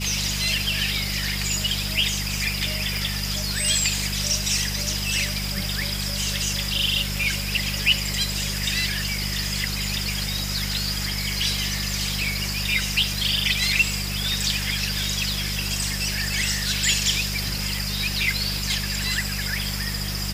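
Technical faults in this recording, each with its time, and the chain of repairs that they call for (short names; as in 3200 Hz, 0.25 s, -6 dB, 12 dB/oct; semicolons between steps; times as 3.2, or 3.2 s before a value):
hum 50 Hz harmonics 4 -30 dBFS
2.97 pop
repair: de-click; de-hum 50 Hz, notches 4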